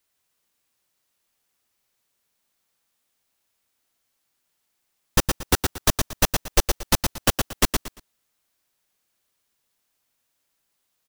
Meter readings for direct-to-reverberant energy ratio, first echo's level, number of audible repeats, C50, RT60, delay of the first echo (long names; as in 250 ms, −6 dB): no reverb audible, −5.0 dB, 3, no reverb audible, no reverb audible, 115 ms